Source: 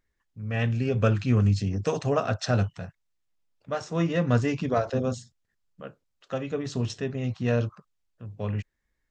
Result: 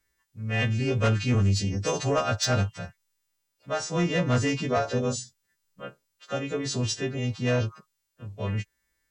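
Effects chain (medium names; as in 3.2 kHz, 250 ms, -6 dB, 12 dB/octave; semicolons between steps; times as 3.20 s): partials quantised in pitch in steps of 2 st; sine folder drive 5 dB, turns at -9.5 dBFS; trim -7.5 dB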